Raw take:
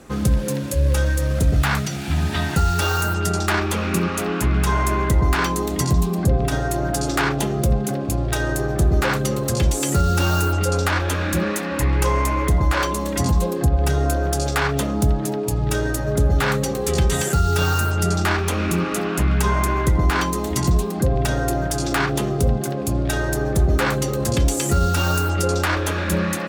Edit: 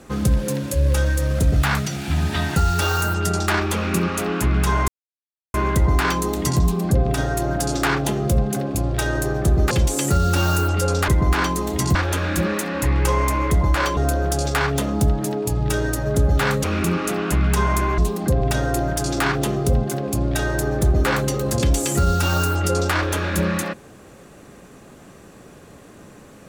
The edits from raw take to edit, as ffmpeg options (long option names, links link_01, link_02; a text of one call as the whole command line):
ffmpeg -i in.wav -filter_complex "[0:a]asplit=8[link_01][link_02][link_03][link_04][link_05][link_06][link_07][link_08];[link_01]atrim=end=4.88,asetpts=PTS-STARTPTS,afade=type=out:start_time=4.876:duration=0.004:curve=hsin,apad=pad_dur=0.66[link_09];[link_02]atrim=start=4.88:end=9.052,asetpts=PTS-STARTPTS,afade=type=in:duration=0.004:curve=hsin[link_10];[link_03]atrim=start=9.548:end=10.922[link_11];[link_04]atrim=start=19.848:end=20.722[link_12];[link_05]atrim=start=10.918:end=12.942[link_13];[link_06]atrim=start=13.978:end=16.652[link_14];[link_07]atrim=start=18.508:end=19.852[link_15];[link_08]atrim=start=20.718[link_16];[link_09][link_10]concat=n=2:v=0:a=1[link_17];[link_17][link_11]acrossfade=duration=0.004:curve1=hsin:curve2=hsin[link_18];[link_18][link_12]acrossfade=duration=0.004:curve1=hsin:curve2=hsin[link_19];[link_19][link_13]acrossfade=duration=0.004:curve1=hsin:curve2=hsin[link_20];[link_20][link_14]acrossfade=duration=0.004:curve1=hsin:curve2=hsin[link_21];[link_21][link_15]acrossfade=duration=0.004:curve1=hsin:curve2=hsin[link_22];[link_22][link_16]acrossfade=duration=0.004:curve1=hsin:curve2=hsin" out.wav